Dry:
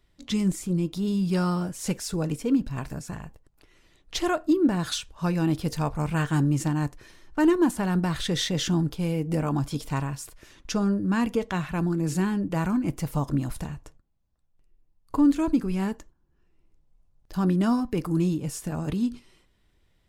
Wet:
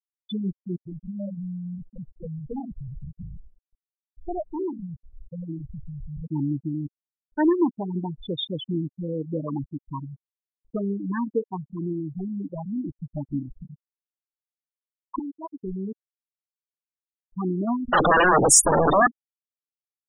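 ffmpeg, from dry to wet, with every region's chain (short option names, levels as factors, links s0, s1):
-filter_complex "[0:a]asettb=1/sr,asplit=3[s0][s1][s2];[s0]atrim=end=0.764[s3];[s1]atrim=start=0.76:end=6.27,asetpts=PTS-STARTPTS,afade=t=in:d=0.004:c=qsin,afade=t=out:st=5.506:d=0.004:c=qsin,aemphasis=mode=reproduction:type=bsi,volume=18.8,asoftclip=hard,volume=0.0531,acrossover=split=230|4600[s4][s5][s6];[s5]adelay=50[s7];[s4]adelay=100[s8];[s8][s7][s6]amix=inputs=3:normalize=0,atrim=end_sample=242991[s9];[s2]atrim=start=6.266[s10];[s3][s9]acrossfade=d=0.004:c1=hsin:c2=qsin[s11];[s11][s10]acrossfade=d=0.004:c1=qsin:c2=hsin,asettb=1/sr,asplit=3[s12][s13][s14];[s12]atrim=end=11.934[s15];[s13]atrim=start=11.93:end=12.95,asetpts=PTS-STARTPTS,afade=t=in:d=0.004:c=qsin,afade=t=out:st=1.016:d=0.004:c=qsin,aeval=exprs='0.0891*(abs(mod(val(0)/0.0891+3,4)-2)-1)':c=same,adynamicsmooth=sensitivity=7:basefreq=950[s16];[s14]atrim=start=12.946[s17];[s15][s16]acrossfade=d=0.004:c1=hsin:c2=qsin[s18];[s18][s17]acrossfade=d=0.004:c1=qsin:c2=hsin,asettb=1/sr,asplit=3[s19][s20][s21];[s19]atrim=end=15.194[s22];[s20]atrim=start=15.19:end=15.62,asetpts=PTS-STARTPTS,afade=t=in:d=0.004:c=qsin,afade=t=out:st=0.426:d=0.004:c=qsin,highpass=660,highshelf=f=2700:g=2.5[s23];[s21]atrim=start=15.616[s24];[s22][s23]acrossfade=d=0.004:c1=hsin:c2=qsin[s25];[s25][s24]acrossfade=d=0.004:c1=qsin:c2=hsin,asettb=1/sr,asplit=3[s26][s27][s28];[s26]atrim=end=17.884[s29];[s27]atrim=start=17.88:end=19.07,asetpts=PTS-STARTPTS,afade=t=in:d=0.004:c=qsin,afade=t=out:st=1.186:d=0.004:c=qsin,aeval=exprs='0.188*sin(PI/2*7.94*val(0)/0.188)':c=same,asuperstop=centerf=2200:order=4:qfactor=4.7[s30];[s28]atrim=start=19.066[s31];[s29][s30]acrossfade=d=0.004:c1=hsin:c2=qsin[s32];[s32][s31]acrossfade=d=0.004:c1=qsin:c2=hsin,afftfilt=real='re*gte(hypot(re,im),0.178)':imag='im*gte(hypot(re,im),0.178)':win_size=1024:overlap=0.75,bass=f=250:g=-10,treble=f=4000:g=6,volume=1.41"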